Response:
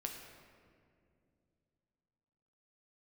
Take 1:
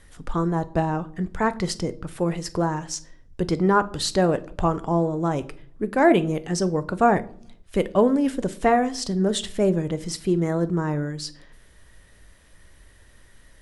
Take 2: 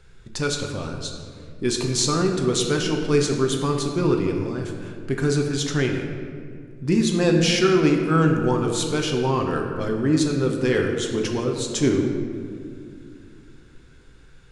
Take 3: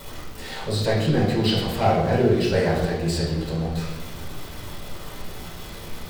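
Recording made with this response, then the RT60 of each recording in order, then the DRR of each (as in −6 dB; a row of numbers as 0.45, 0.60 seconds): 2; non-exponential decay, 2.4 s, 1.2 s; 12.5, 1.5, −6.0 decibels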